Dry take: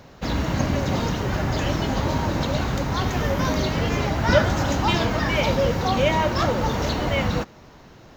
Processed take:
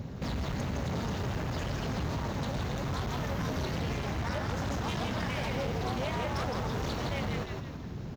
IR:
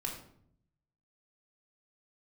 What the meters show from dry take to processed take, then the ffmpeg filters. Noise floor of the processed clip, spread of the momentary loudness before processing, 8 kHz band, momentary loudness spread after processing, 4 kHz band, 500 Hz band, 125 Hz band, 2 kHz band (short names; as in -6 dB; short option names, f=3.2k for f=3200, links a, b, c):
-40 dBFS, 5 LU, -10.5 dB, 2 LU, -11.5 dB, -12.5 dB, -9.0 dB, -11.5 dB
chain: -filter_complex "[0:a]acrossover=split=340[a][b];[a]acompressor=mode=upward:threshold=-28dB:ratio=2.5[c];[b]tremolo=f=260:d=0.947[d];[c][d]amix=inputs=2:normalize=0,acompressor=threshold=-28dB:ratio=5,equalizer=f=310:t=o:w=0.25:g=-7.5,asplit=2[e][f];[f]asplit=6[g][h][i][j][k][l];[g]adelay=164,afreqshift=-100,volume=-4dB[m];[h]adelay=328,afreqshift=-200,volume=-10.9dB[n];[i]adelay=492,afreqshift=-300,volume=-17.9dB[o];[j]adelay=656,afreqshift=-400,volume=-24.8dB[p];[k]adelay=820,afreqshift=-500,volume=-31.7dB[q];[l]adelay=984,afreqshift=-600,volume=-38.7dB[r];[m][n][o][p][q][r]amix=inputs=6:normalize=0[s];[e][s]amix=inputs=2:normalize=0,volume=28dB,asoftclip=hard,volume=-28dB,highpass=54"